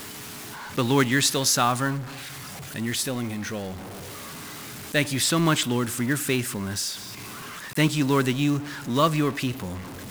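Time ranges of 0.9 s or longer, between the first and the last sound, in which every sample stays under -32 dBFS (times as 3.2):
3.75–4.93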